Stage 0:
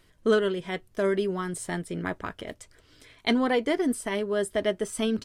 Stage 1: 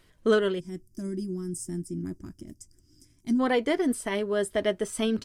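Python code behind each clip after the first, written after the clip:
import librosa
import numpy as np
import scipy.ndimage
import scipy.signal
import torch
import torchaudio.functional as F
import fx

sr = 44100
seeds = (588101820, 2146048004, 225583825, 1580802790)

y = fx.spec_box(x, sr, start_s=0.6, length_s=2.8, low_hz=380.0, high_hz=4700.0, gain_db=-23)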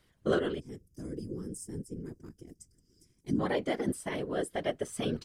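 y = fx.whisperise(x, sr, seeds[0])
y = F.gain(torch.from_numpy(y), -6.5).numpy()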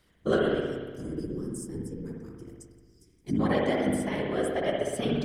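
y = fx.rev_spring(x, sr, rt60_s=1.4, pass_ms=(59,), chirp_ms=75, drr_db=-0.5)
y = F.gain(torch.from_numpy(y), 1.5).numpy()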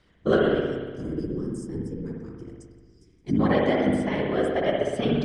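y = fx.air_absorb(x, sr, metres=98.0)
y = F.gain(torch.from_numpy(y), 4.5).numpy()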